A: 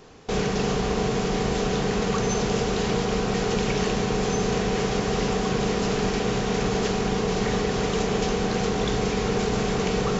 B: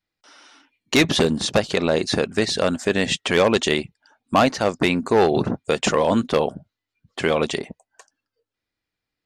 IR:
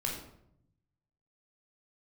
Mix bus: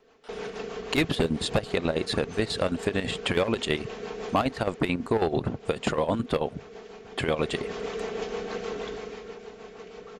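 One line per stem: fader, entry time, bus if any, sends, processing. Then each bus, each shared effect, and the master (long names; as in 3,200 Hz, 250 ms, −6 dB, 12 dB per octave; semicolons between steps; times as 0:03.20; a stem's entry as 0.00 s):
0:04.35 −7.5 dB → 0:04.98 −16.5 dB → 0:07.20 −16.5 dB → 0:07.52 −4.5 dB → 0:08.79 −4.5 dB → 0:09.45 −16 dB, 0.00 s, no send, bass and treble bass −13 dB, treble −9 dB; comb filter 4.5 ms, depth 44%; rotating-speaker cabinet horn 6.3 Hz
+1.0 dB, 0.00 s, no send, parametric band 5,900 Hz −14 dB 0.36 octaves; square-wave tremolo 9.2 Hz, depth 65%, duty 60%; low-shelf EQ 110 Hz +9.5 dB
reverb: not used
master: parametric band 200 Hz −4 dB 0.23 octaves; downward compressor 2 to 1, threshold −27 dBFS, peak gain reduction 9.5 dB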